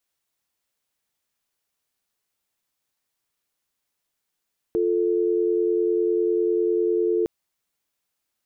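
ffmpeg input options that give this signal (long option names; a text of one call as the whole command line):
ffmpeg -f lavfi -i "aevalsrc='0.0841*(sin(2*PI*350*t)+sin(2*PI*440*t))':duration=2.51:sample_rate=44100" out.wav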